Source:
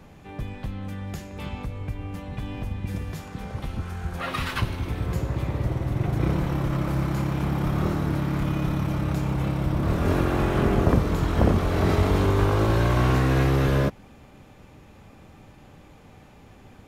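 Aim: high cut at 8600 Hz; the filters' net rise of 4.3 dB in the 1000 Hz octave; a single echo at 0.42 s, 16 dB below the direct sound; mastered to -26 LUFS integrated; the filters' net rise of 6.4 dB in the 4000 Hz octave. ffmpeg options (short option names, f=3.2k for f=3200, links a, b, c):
-af "lowpass=8.6k,equalizer=f=1k:t=o:g=5,equalizer=f=4k:t=o:g=8,aecho=1:1:420:0.158,volume=-1.5dB"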